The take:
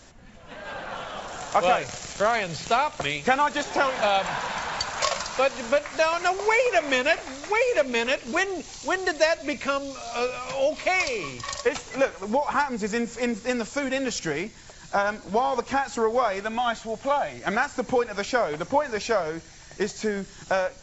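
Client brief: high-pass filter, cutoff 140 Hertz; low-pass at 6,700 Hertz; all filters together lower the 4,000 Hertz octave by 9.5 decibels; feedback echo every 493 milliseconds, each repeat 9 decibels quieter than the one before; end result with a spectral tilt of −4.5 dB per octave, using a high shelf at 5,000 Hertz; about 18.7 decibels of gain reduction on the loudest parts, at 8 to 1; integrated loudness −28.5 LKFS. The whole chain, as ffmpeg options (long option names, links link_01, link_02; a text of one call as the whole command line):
ffmpeg -i in.wav -af "highpass=140,lowpass=6700,equalizer=frequency=4000:width_type=o:gain=-9,highshelf=frequency=5000:gain=-7.5,acompressor=threshold=-37dB:ratio=8,aecho=1:1:493|986|1479|1972:0.355|0.124|0.0435|0.0152,volume=12dB" out.wav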